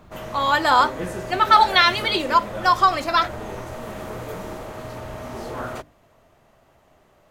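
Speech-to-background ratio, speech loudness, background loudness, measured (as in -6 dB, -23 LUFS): 14.5 dB, -18.5 LUFS, -33.0 LUFS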